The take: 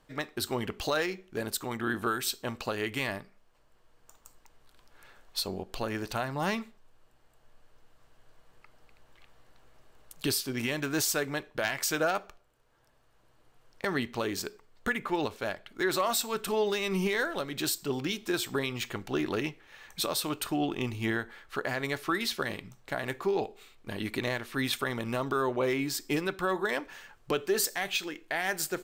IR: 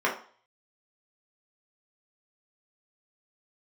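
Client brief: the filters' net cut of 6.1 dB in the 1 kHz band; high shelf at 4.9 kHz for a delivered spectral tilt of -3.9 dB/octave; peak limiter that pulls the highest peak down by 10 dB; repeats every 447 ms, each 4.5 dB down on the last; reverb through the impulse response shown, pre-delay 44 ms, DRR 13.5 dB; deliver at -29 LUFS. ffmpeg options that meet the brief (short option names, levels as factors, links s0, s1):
-filter_complex "[0:a]equalizer=f=1000:t=o:g=-9,highshelf=f=4900:g=4.5,alimiter=limit=0.0708:level=0:latency=1,aecho=1:1:447|894|1341|1788|2235|2682|3129|3576|4023:0.596|0.357|0.214|0.129|0.0772|0.0463|0.0278|0.0167|0.01,asplit=2[s0][s1];[1:a]atrim=start_sample=2205,adelay=44[s2];[s1][s2]afir=irnorm=-1:irlink=0,volume=0.0447[s3];[s0][s3]amix=inputs=2:normalize=0,volume=1.58"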